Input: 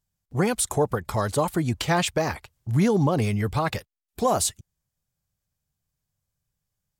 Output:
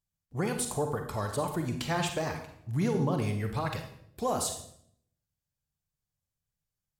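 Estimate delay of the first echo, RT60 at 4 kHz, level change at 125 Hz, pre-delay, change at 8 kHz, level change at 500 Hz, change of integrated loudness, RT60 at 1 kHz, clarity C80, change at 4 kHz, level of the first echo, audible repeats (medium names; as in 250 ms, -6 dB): no echo, 0.60 s, -7.0 dB, 34 ms, -7.5 dB, -7.5 dB, -7.5 dB, 0.60 s, 10.5 dB, -7.0 dB, no echo, no echo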